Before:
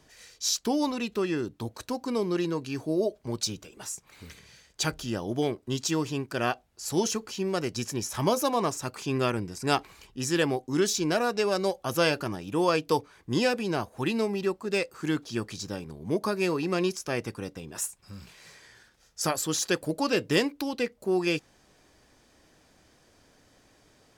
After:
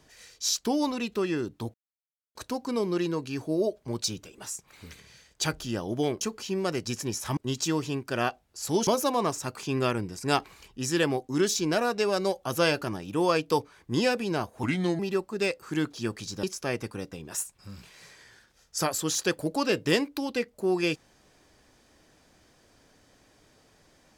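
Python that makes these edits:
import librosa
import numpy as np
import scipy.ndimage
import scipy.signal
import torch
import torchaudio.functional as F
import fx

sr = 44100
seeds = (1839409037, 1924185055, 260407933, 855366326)

y = fx.edit(x, sr, fx.insert_silence(at_s=1.74, length_s=0.61),
    fx.move(start_s=7.1, length_s=1.16, to_s=5.6),
    fx.speed_span(start_s=14.02, length_s=0.29, speed=0.8),
    fx.cut(start_s=15.75, length_s=1.12), tone=tone)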